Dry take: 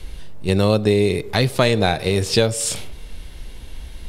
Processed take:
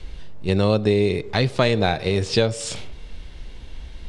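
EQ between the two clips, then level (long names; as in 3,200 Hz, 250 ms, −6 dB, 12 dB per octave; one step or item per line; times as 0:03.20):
Bessel low-pass filter 5,800 Hz, order 6
−2.0 dB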